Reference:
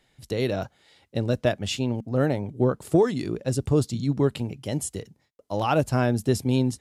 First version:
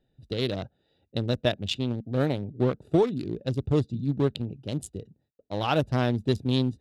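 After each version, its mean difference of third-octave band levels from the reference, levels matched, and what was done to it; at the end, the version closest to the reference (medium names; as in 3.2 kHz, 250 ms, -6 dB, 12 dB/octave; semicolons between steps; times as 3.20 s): 4.0 dB: local Wiener filter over 41 samples; peaking EQ 3.7 kHz +11 dB 0.72 oct; trim -2 dB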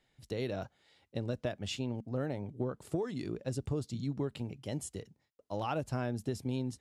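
2.0 dB: treble shelf 11 kHz -9 dB; compression, threshold -22 dBFS, peak gain reduction 7.5 dB; trim -8.5 dB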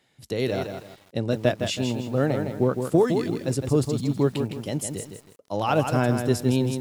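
5.5 dB: high-pass 100 Hz 12 dB/octave; bit-crushed delay 161 ms, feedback 35%, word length 8-bit, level -6.5 dB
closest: second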